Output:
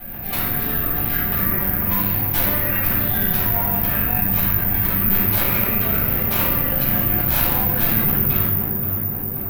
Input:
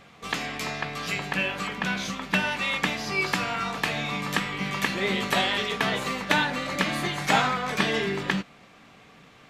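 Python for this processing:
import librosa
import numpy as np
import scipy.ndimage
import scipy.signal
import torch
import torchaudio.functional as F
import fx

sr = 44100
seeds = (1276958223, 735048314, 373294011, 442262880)

y = fx.octave_divider(x, sr, octaves=1, level_db=4.0)
y = fx.formant_shift(y, sr, semitones=-6)
y = fx.rotary(y, sr, hz=5.0)
y = (np.mod(10.0 ** (17.5 / 20.0) * y + 1.0, 2.0) - 1.0) / 10.0 ** (17.5 / 20.0)
y = fx.air_absorb(y, sr, metres=98.0)
y = fx.echo_tape(y, sr, ms=526, feedback_pct=62, wet_db=-5.5, lp_hz=1000.0, drive_db=23.0, wow_cents=6)
y = fx.room_shoebox(y, sr, seeds[0], volume_m3=460.0, walls='mixed', distance_m=8.0)
y = (np.kron(y[::3], np.eye(3)[0]) * 3)[:len(y)]
y = fx.env_flatten(y, sr, amount_pct=50)
y = y * 10.0 ** (-16.5 / 20.0)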